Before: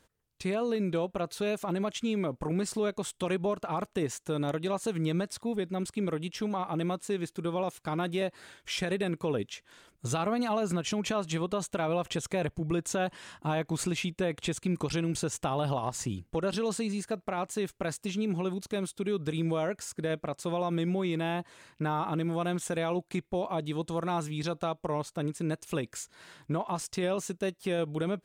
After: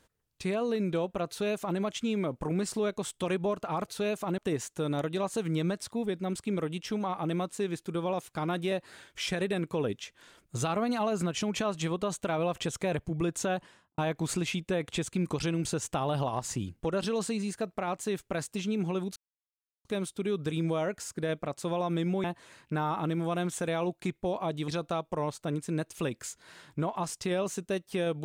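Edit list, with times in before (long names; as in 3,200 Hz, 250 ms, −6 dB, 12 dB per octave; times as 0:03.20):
0:01.29–0:01.79: duplicate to 0:03.88
0:12.95–0:13.48: fade out and dull
0:18.66: splice in silence 0.69 s
0:21.05–0:21.33: remove
0:23.77–0:24.40: remove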